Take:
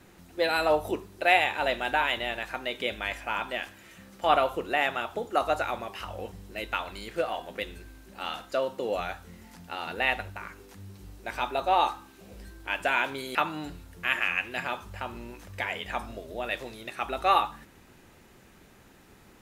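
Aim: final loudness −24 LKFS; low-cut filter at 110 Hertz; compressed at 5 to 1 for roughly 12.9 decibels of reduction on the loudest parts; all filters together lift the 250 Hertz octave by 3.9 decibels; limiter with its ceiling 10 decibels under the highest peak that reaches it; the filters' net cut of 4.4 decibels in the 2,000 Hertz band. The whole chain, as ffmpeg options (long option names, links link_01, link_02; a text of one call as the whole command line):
ffmpeg -i in.wav -af "highpass=110,equalizer=frequency=250:width_type=o:gain=5.5,equalizer=frequency=2000:width_type=o:gain=-6,acompressor=threshold=-33dB:ratio=5,volume=16dB,alimiter=limit=-10.5dB:level=0:latency=1" out.wav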